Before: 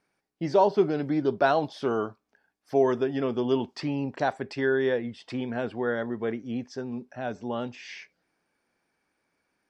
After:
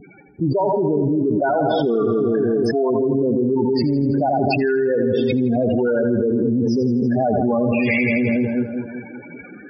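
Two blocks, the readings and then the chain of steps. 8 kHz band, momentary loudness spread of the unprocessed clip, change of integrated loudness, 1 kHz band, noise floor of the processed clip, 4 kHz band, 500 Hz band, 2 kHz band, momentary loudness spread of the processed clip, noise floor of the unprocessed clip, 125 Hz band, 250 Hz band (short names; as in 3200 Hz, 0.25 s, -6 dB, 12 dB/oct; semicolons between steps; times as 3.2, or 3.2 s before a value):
n/a, 12 LU, +9.0 dB, +5.5 dB, -40 dBFS, +5.5 dB, +8.5 dB, +8.0 dB, 4 LU, -78 dBFS, +13.0 dB, +12.5 dB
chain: low shelf 160 Hz +3.5 dB; vocal rider within 3 dB 2 s; loudest bins only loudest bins 8; split-band echo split 460 Hz, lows 0.189 s, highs 82 ms, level -8.5 dB; fast leveller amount 100%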